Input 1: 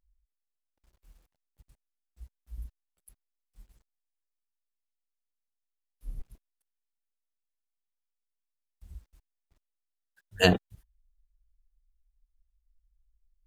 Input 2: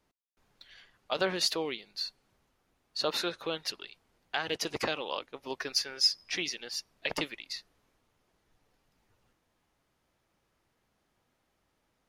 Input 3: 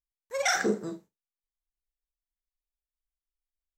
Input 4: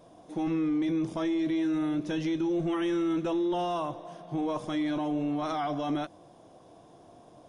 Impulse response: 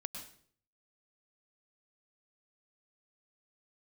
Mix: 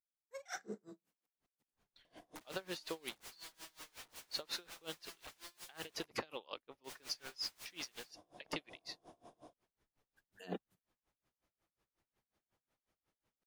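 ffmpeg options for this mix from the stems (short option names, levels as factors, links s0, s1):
-filter_complex "[0:a]highpass=f=200:w=0.5412,highpass=f=200:w=1.3066,dynaudnorm=f=370:g=11:m=5.96,volume=0.211[s0];[1:a]adelay=1350,volume=0.501[s1];[2:a]volume=0.188[s2];[3:a]aeval=exprs='(mod(75*val(0)+1,2)-1)/75':c=same,acompressor=threshold=0.00282:ratio=4,equalizer=f=140:t=o:w=2.1:g=-5,adelay=2050,volume=1.19,asplit=3[s3][s4][s5];[s3]atrim=end=6.06,asetpts=PTS-STARTPTS,afade=t=out:st=6.056:d=0.004:c=hsin[s6];[s4]atrim=start=6.06:end=6.84,asetpts=PTS-STARTPTS,volume=0[s7];[s5]atrim=start=6.84,asetpts=PTS-STARTPTS,afade=t=in:d=0.004:c=hsin[s8];[s6][s7][s8]concat=n=3:v=0:a=1[s9];[s0][s1][s2][s9]amix=inputs=4:normalize=0,aeval=exprs='val(0)*pow(10,-27*(0.5-0.5*cos(2*PI*5.5*n/s))/20)':c=same"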